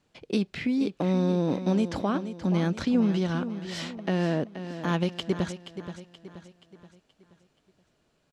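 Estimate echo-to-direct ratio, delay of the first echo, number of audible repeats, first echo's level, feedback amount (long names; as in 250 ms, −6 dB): −10.0 dB, 477 ms, 4, −11.0 dB, 45%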